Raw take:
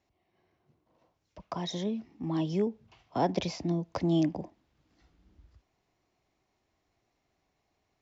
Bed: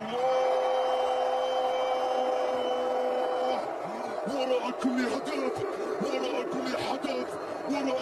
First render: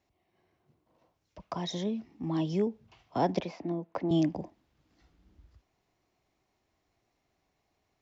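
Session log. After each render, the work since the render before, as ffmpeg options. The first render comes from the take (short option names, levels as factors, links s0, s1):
-filter_complex "[0:a]asettb=1/sr,asplit=3[s0][s1][s2];[s0]atrim=end=3.404[s3];[s1]atrim=start=3.4:end=4.11,asetpts=PTS-STARTPTS,afade=t=in:d=0.004:c=qsin,afade=t=out:st=0.706:d=0.004:c=qsin,acrossover=split=200 2600:gain=0.126 1 0.141[s4][s5][s6];[s4][s5][s6]amix=inputs=3:normalize=0[s7];[s2]atrim=start=4.106[s8];[s3][s7]acrossfade=d=0.004:c1=hsin:c2=qsin[s9];[s9][s8]acrossfade=d=0.004:c1=qsin:c2=hsin"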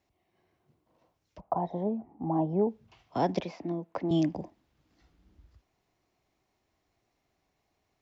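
-filter_complex "[0:a]asettb=1/sr,asplit=3[s0][s1][s2];[s0]atrim=end=1.404[s3];[s1]atrim=start=1.4:end=2.69,asetpts=PTS-STARTPTS,afade=t=in:d=0.004:c=qsin,afade=t=out:st=1.286:d=0.004:c=qsin,lowpass=f=790:t=q:w=4.2[s4];[s2]atrim=start=2.686[s5];[s3][s4]acrossfade=d=0.004:c1=hsin:c2=qsin[s6];[s6][s5]acrossfade=d=0.004:c1=qsin:c2=hsin"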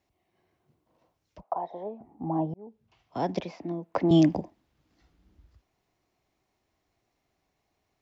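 -filter_complex "[0:a]asettb=1/sr,asplit=3[s0][s1][s2];[s0]atrim=end=1.434[s3];[s1]atrim=start=1.43:end=2.01,asetpts=PTS-STARTPTS,afade=t=in:d=0.004:c=qsin,afade=t=out:st=0.576:d=0.004:c=qsin,highpass=470,lowpass=5200[s4];[s2]atrim=start=2.006[s5];[s3][s4]acrossfade=d=0.004:c1=hsin:c2=qsin[s6];[s6][s5]acrossfade=d=0.004:c1=qsin:c2=hsin,asettb=1/sr,asplit=3[s7][s8][s9];[s7]atrim=end=3.944[s10];[s8]atrim=start=3.94:end=4.4,asetpts=PTS-STARTPTS,afade=t=in:d=0.004:c=qsin,afade=t=out:st=0.456:d=0.004:c=qsin,acontrast=83[s11];[s9]atrim=start=4.396[s12];[s10][s11]acrossfade=d=0.004:c1=hsin:c2=qsin[s13];[s13][s12]acrossfade=d=0.004:c1=qsin:c2=hsin,asplit=2[s14][s15];[s14]atrim=end=2.54,asetpts=PTS-STARTPTS,afade=t=out:st=2.536:d=0.004:c=hsin[s16];[s15]atrim=start=2.54,asetpts=PTS-STARTPTS,afade=t=in:d=0.84[s17];[s16][s17]concat=n=2:v=0:a=1"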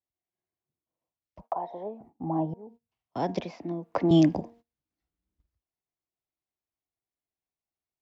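-af "bandreject=f=233.6:t=h:w=4,bandreject=f=467.2:t=h:w=4,bandreject=f=700.8:t=h:w=4,bandreject=f=934.4:t=h:w=4,bandreject=f=1168:t=h:w=4,bandreject=f=1401.6:t=h:w=4,bandreject=f=1635.2:t=h:w=4,agate=range=0.0708:threshold=0.00251:ratio=16:detection=peak"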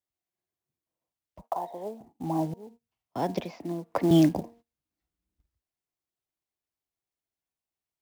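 -af "acrusher=bits=6:mode=log:mix=0:aa=0.000001"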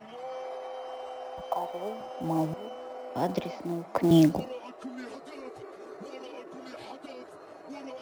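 -filter_complex "[1:a]volume=0.237[s0];[0:a][s0]amix=inputs=2:normalize=0"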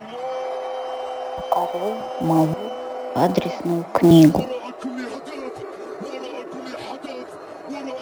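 -af "volume=3.55,alimiter=limit=0.708:level=0:latency=1"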